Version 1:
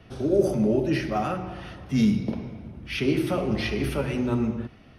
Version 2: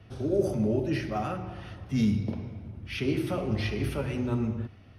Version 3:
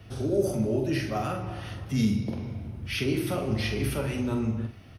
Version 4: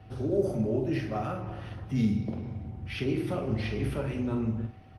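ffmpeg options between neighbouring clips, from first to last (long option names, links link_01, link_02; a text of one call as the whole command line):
ffmpeg -i in.wav -af "equalizer=frequency=97:width=4.1:gain=14.5,volume=-5dB" out.wav
ffmpeg -i in.wav -filter_complex "[0:a]asplit=2[link_01][link_02];[link_02]acompressor=threshold=-34dB:ratio=6,volume=-0.5dB[link_03];[link_01][link_03]amix=inputs=2:normalize=0,crystalizer=i=1.5:c=0,asplit=2[link_04][link_05];[link_05]adelay=45,volume=-7dB[link_06];[link_04][link_06]amix=inputs=2:normalize=0,volume=-2.5dB" out.wav
ffmpeg -i in.wav -af "lowpass=frequency=2400:poles=1,aeval=exprs='val(0)+0.00158*sin(2*PI*760*n/s)':channel_layout=same,volume=-1.5dB" -ar 48000 -c:a libopus -b:a 24k out.opus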